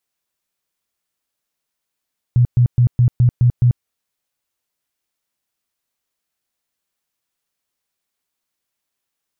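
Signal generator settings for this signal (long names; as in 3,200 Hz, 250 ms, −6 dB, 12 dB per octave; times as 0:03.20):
tone bursts 122 Hz, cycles 11, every 0.21 s, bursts 7, −8.5 dBFS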